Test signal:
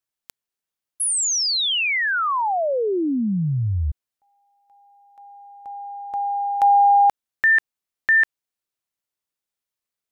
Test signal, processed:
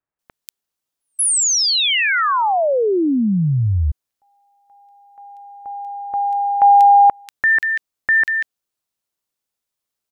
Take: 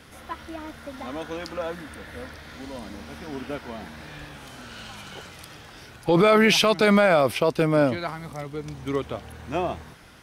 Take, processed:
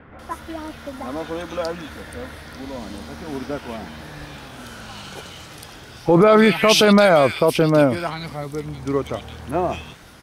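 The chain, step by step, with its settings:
multiband delay without the direct sound lows, highs 190 ms, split 2,100 Hz
level +5 dB

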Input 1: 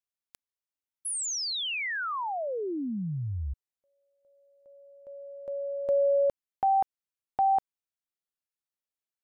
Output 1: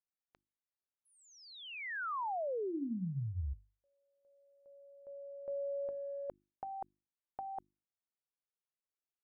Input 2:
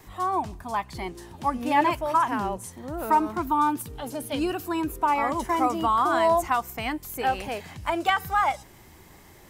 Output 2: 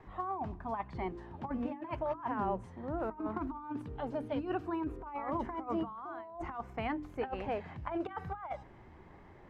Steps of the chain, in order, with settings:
compressor whose output falls as the input rises −28 dBFS, ratio −0.5
low-pass filter 1,600 Hz 12 dB per octave
mains-hum notches 50/100/150/200/250/300/350 Hz
level −7 dB

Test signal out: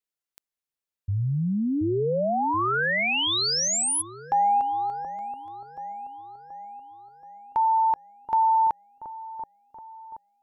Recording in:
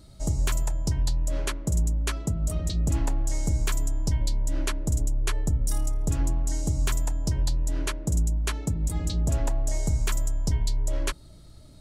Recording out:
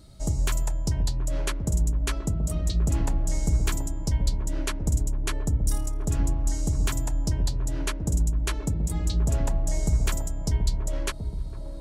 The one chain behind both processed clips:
delay with a low-pass on its return 728 ms, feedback 52%, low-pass 830 Hz, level −7.5 dB

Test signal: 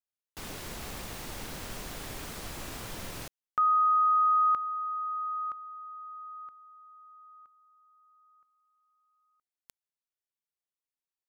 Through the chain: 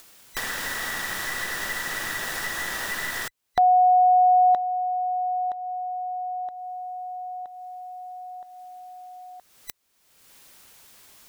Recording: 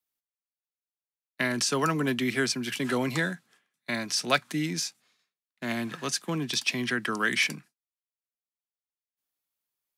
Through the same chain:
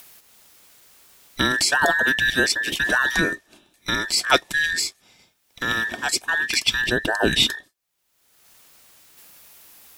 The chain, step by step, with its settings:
frequency inversion band by band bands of 2,000 Hz
upward compression, threshold −31 dBFS
level +7 dB

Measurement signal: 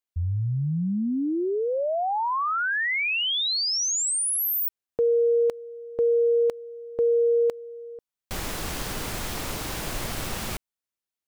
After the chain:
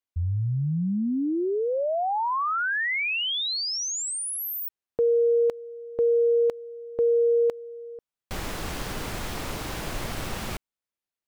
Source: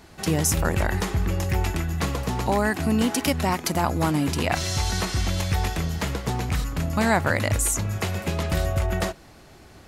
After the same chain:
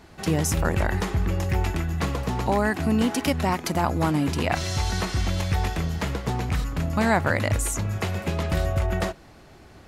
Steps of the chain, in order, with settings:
high-shelf EQ 4,700 Hz −6.5 dB

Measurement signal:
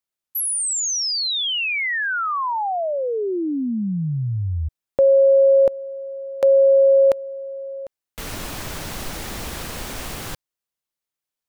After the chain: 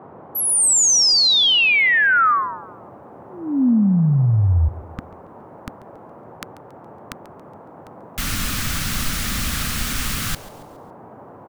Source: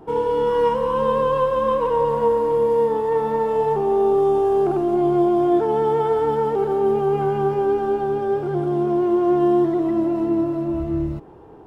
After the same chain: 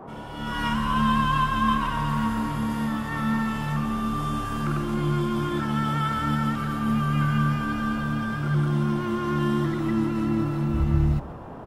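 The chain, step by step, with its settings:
elliptic band-stop filter 260–1,200 Hz, stop band 40 dB
on a send: repeating echo 139 ms, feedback 45%, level −18.5 dB
on the sum: automatic gain control gain up to 13 dB
noise in a band 94–980 Hz −37 dBFS
level −4.5 dB

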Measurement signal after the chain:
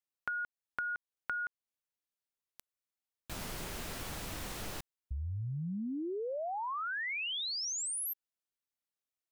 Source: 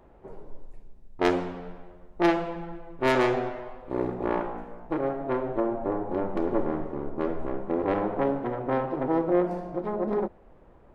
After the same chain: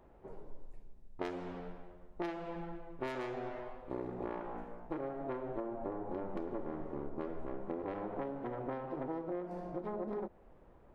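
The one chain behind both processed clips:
downward compressor 12 to 1, threshold −29 dBFS
level −6 dB

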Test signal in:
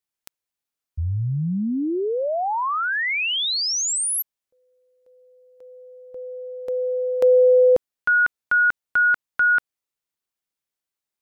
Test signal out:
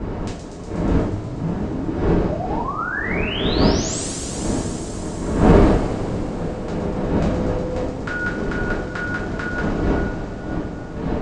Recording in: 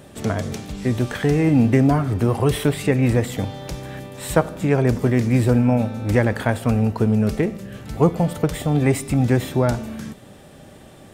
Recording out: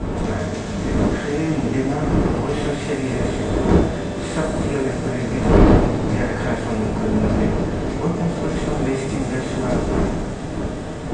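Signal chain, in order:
compressor on every frequency bin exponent 0.6
wind on the microphone 360 Hz −13 dBFS
in parallel at +2 dB: downward compressor, threshold −18 dBFS
on the sum: Butterworth low-pass 8,100 Hz 48 dB per octave
on a send: delay with a high-pass on its return 121 ms, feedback 82%, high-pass 5,300 Hz, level −4 dB
on the sum: coupled-rooms reverb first 0.4 s, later 4.9 s, from −18 dB, DRR −8.5 dB
boost into a limiter −18 dB
level −1 dB

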